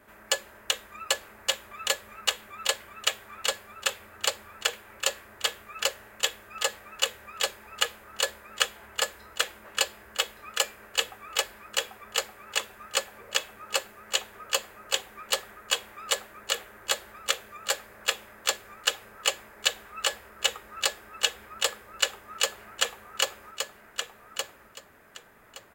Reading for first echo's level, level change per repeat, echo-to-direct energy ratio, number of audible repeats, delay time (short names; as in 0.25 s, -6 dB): -5.5 dB, -14.0 dB, -5.5 dB, 3, 1.169 s